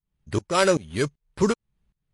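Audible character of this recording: tremolo saw up 2.6 Hz, depth 95%; aliases and images of a low sample rate 6400 Hz, jitter 0%; MP3

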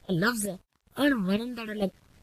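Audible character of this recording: phasing stages 12, 2.3 Hz, lowest notch 590–1800 Hz; chopped level 1.1 Hz, depth 65%, duty 50%; a quantiser's noise floor 10-bit, dither none; Vorbis

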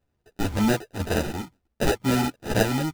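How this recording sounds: tremolo saw down 2 Hz, depth 65%; aliases and images of a low sample rate 1100 Hz, jitter 0%; a shimmering, thickened sound

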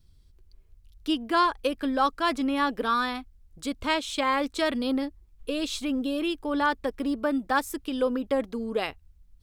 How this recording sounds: noise floor -58 dBFS; spectral tilt -1.0 dB/oct

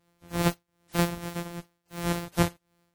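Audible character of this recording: a buzz of ramps at a fixed pitch in blocks of 256 samples; tremolo triangle 2.6 Hz, depth 85%; WMA

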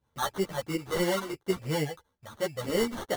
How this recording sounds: phasing stages 12, 3 Hz, lowest notch 300–3300 Hz; aliases and images of a low sample rate 2500 Hz, jitter 0%; a shimmering, thickened sound

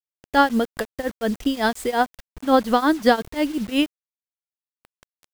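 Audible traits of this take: tremolo triangle 5.6 Hz, depth 95%; a quantiser's noise floor 8-bit, dither none

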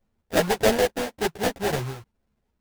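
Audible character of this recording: aliases and images of a low sample rate 1200 Hz, jitter 20%; a shimmering, thickened sound

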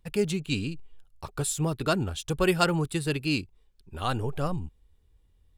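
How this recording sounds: noise floor -63 dBFS; spectral tilt -5.0 dB/oct

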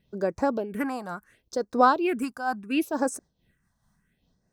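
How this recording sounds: phasing stages 4, 0.72 Hz, lowest notch 410–3100 Hz; noise-modulated level

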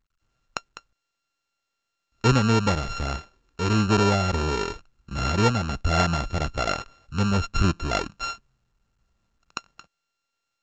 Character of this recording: a buzz of ramps at a fixed pitch in blocks of 32 samples; µ-law

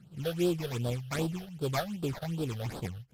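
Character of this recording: aliases and images of a low sample rate 2900 Hz, jitter 20%; phasing stages 8, 2.6 Hz, lowest notch 280–2100 Hz; AAC

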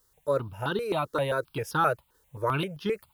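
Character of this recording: a quantiser's noise floor 12-bit, dither triangular; tremolo saw down 1.4 Hz, depth 35%; notches that jump at a steady rate 7.6 Hz 660–2300 Hz

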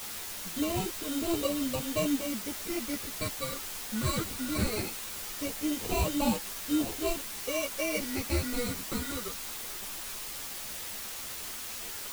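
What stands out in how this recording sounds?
aliases and images of a low sample rate 1700 Hz, jitter 0%; phasing stages 8, 0.19 Hz, lowest notch 770–1800 Hz; a quantiser's noise floor 6-bit, dither triangular; a shimmering, thickened sound

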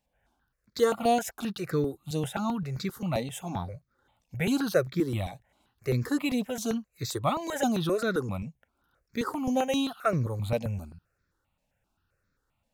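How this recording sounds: notches that jump at a steady rate 7.6 Hz 370–2900 Hz

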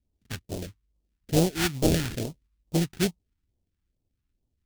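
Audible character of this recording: aliases and images of a low sample rate 1100 Hz, jitter 20%; phasing stages 2, 2.3 Hz, lowest notch 530–1600 Hz

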